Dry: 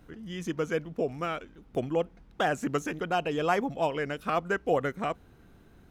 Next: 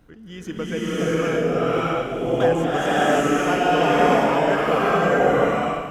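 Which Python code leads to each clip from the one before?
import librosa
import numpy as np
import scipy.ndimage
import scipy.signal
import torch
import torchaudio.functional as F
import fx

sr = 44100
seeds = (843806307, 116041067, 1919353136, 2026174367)

y = fx.rev_bloom(x, sr, seeds[0], attack_ms=620, drr_db=-10.5)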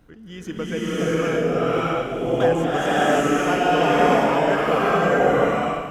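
y = x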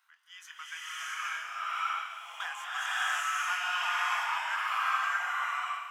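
y = scipy.signal.sosfilt(scipy.signal.butter(8, 970.0, 'highpass', fs=sr, output='sos'), x)
y = fx.doubler(y, sr, ms=23.0, db=-11)
y = y * librosa.db_to_amplitude(-5.5)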